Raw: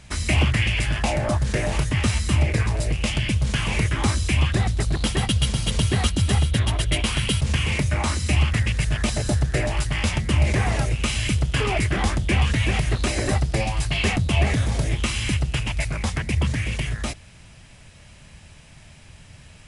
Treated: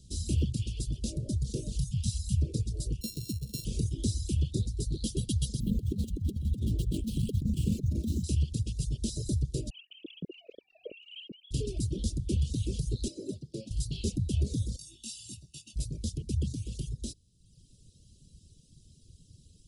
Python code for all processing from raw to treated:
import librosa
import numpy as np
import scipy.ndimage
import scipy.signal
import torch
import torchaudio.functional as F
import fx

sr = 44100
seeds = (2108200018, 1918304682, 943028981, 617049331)

y = fx.chain(x, sr, fx.brickwall_bandstop(low_hz=220.0, high_hz=2200.0),
    fx.doubler(ms=23.0, db=-12.0), at=(1.79, 2.42))
y = fx.chain(y, sr, fx.sample_sort(block=32),
    fx.highpass(hz=160.0, slope=6), at=(3.01, 3.65))
y = fx.chain(y, sr, fx.median_filter(points=9),
    fx.peak_eq(hz=210.0, db=12.5, octaves=0.82),
    fx.over_compress(threshold_db=-19.0, ratio=-0.5), at=(5.6, 8.24))
y = fx.chain(y, sr, fx.sine_speech(),
    fx.over_compress(threshold_db=-25.0, ratio=-1.0), at=(9.7, 11.51))
y = fx.chain(y, sr, fx.highpass(hz=220.0, slope=12),
    fx.high_shelf(hz=3700.0, db=-11.5), at=(13.08, 13.71))
y = fx.chain(y, sr, fx.highpass(hz=1000.0, slope=6),
    fx.comb(ms=1.1, depth=0.86),
    fx.detune_double(cents=13), at=(14.76, 15.76))
y = scipy.signal.sosfilt(scipy.signal.cheby2(4, 50, [800.0, 2100.0], 'bandstop', fs=sr, output='sos'), y)
y = fx.dereverb_blind(y, sr, rt60_s=1.0)
y = fx.peak_eq(y, sr, hz=830.0, db=-8.0, octaves=0.27)
y = y * 10.0 ** (-7.0 / 20.0)